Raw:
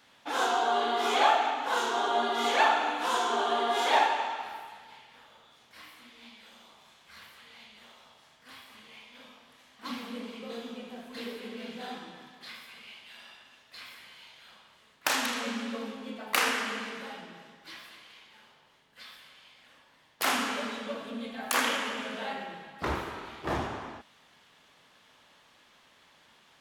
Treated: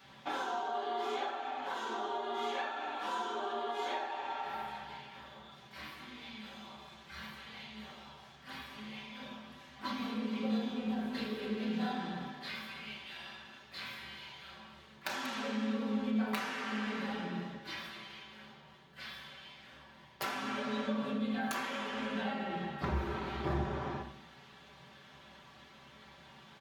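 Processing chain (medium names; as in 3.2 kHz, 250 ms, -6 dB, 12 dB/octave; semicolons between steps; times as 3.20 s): peaking EQ 9.7 kHz -7.5 dB 1.3 oct; compression 16:1, threshold -39 dBFS, peak gain reduction 21 dB; comb 5.2 ms, depth 76%; on a send: peaking EQ 110 Hz +14.5 dB 2 oct + reverberation RT60 0.55 s, pre-delay 3 ms, DRR 0.5 dB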